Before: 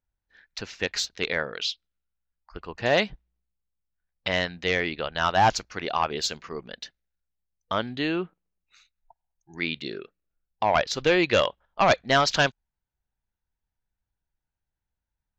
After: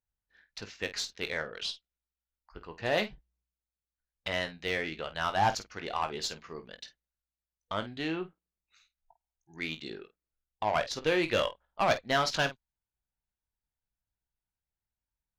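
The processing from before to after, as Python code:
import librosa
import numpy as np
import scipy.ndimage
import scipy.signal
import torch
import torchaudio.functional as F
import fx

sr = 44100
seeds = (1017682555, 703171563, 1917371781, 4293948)

y = fx.cheby_harmonics(x, sr, harmonics=(6, 8), levels_db=(-26, -43), full_scale_db=-11.0)
y = fx.room_early_taps(y, sr, ms=(19, 50), db=(-10.0, -13.0))
y = y * 10.0 ** (-7.5 / 20.0)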